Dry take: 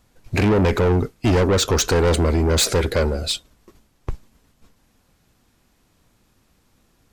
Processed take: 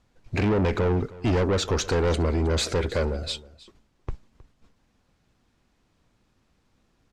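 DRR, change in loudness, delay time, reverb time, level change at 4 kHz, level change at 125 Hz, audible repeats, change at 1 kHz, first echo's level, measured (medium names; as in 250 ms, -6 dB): no reverb, -6.0 dB, 315 ms, no reverb, -7.5 dB, -5.5 dB, 1, -6.0 dB, -20.0 dB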